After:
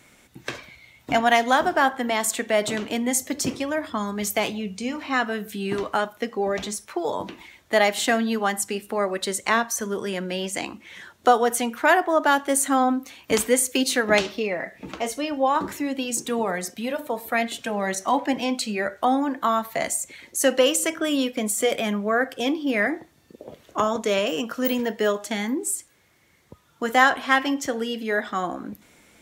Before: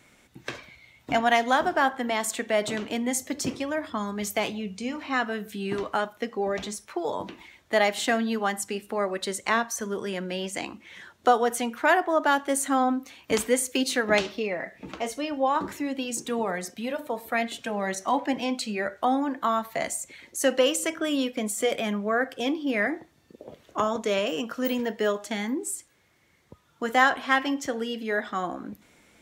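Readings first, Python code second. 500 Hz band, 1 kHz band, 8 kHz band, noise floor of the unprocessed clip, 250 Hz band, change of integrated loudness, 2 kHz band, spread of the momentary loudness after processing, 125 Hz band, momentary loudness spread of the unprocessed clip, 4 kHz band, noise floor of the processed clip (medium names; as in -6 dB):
+3.0 dB, +3.0 dB, +5.5 dB, -62 dBFS, +3.0 dB, +3.5 dB, +3.0 dB, 10 LU, +3.0 dB, 11 LU, +3.5 dB, -58 dBFS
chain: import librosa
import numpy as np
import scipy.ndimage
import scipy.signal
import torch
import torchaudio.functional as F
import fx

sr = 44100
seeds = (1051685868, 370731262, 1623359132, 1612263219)

y = fx.peak_eq(x, sr, hz=14000.0, db=4.5, octaves=1.3)
y = y * librosa.db_to_amplitude(3.0)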